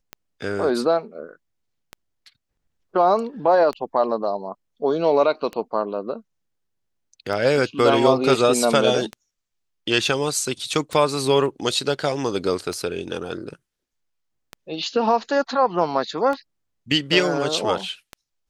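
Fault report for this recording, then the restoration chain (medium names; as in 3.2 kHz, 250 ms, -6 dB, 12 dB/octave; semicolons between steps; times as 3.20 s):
tick 33 1/3 rpm -16 dBFS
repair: de-click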